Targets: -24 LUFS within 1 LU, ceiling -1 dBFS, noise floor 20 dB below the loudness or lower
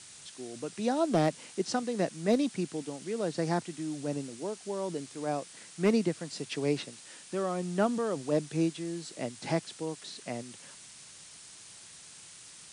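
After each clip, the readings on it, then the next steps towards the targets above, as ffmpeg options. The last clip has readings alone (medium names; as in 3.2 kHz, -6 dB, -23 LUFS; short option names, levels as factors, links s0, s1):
noise floor -51 dBFS; noise floor target -53 dBFS; loudness -32.5 LUFS; peak level -16.5 dBFS; loudness target -24.0 LUFS
-> -af "afftdn=nr=6:nf=-51"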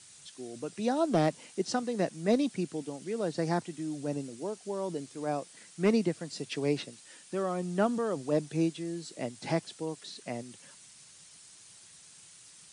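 noise floor -55 dBFS; loudness -32.5 LUFS; peak level -16.5 dBFS; loudness target -24.0 LUFS
-> -af "volume=2.66"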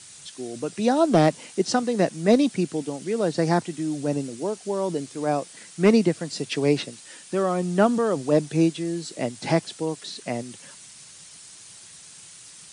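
loudness -24.0 LUFS; peak level -8.0 dBFS; noise floor -46 dBFS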